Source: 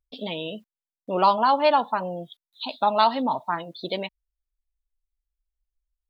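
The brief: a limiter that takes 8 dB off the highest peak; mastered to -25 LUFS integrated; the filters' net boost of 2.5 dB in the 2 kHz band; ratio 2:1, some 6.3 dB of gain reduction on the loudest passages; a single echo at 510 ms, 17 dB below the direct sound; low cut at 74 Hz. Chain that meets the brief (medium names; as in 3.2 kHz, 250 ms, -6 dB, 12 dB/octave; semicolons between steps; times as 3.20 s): high-pass 74 Hz; peaking EQ 2 kHz +3.5 dB; compression 2:1, threshold -25 dBFS; peak limiter -20 dBFS; delay 510 ms -17 dB; trim +7 dB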